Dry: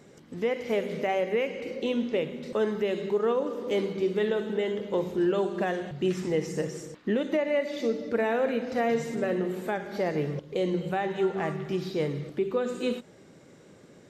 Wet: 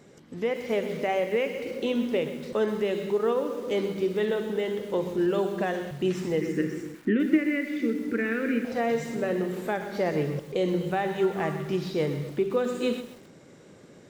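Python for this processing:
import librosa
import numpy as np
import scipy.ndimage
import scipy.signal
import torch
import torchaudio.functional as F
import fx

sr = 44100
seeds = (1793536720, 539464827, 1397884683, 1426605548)

y = fx.curve_eq(x, sr, hz=(160.0, 320.0, 810.0, 1400.0, 2300.0, 3800.0), db=(0, 11, -22, 5, 6, -8), at=(6.41, 8.65))
y = fx.rider(y, sr, range_db=10, speed_s=2.0)
y = fx.echo_crushed(y, sr, ms=127, feedback_pct=35, bits=7, wet_db=-12.0)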